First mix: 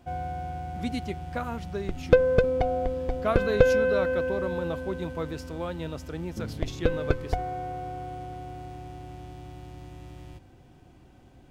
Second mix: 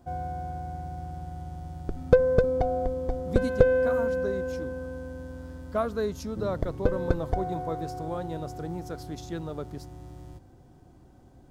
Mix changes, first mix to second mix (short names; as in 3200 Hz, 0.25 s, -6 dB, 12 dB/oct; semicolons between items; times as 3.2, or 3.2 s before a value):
speech: entry +2.50 s; master: add bell 2600 Hz -12.5 dB 1 oct